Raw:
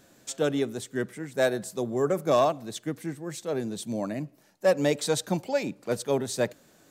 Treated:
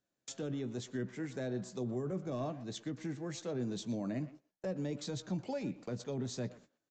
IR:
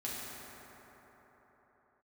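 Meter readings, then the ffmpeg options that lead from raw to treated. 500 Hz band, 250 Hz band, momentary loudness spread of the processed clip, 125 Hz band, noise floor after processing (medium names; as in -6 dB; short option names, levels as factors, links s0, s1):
-14.5 dB, -7.0 dB, 4 LU, -4.5 dB, under -85 dBFS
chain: -filter_complex "[0:a]agate=range=0.0398:threshold=0.00447:ratio=16:detection=peak,acrossover=split=300[s0][s1];[s1]acompressor=threshold=0.0126:ratio=6[s2];[s0][s2]amix=inputs=2:normalize=0,alimiter=level_in=1.68:limit=0.0631:level=0:latency=1:release=24,volume=0.596,asplit=2[s3][s4];[s4]adelay=120,highpass=300,lowpass=3400,asoftclip=type=hard:threshold=0.0133,volume=0.2[s5];[s3][s5]amix=inputs=2:normalize=0,aresample=16000,aresample=44100,asplit=2[s6][s7];[s7]adelay=16,volume=0.266[s8];[s6][s8]amix=inputs=2:normalize=0,volume=0.794"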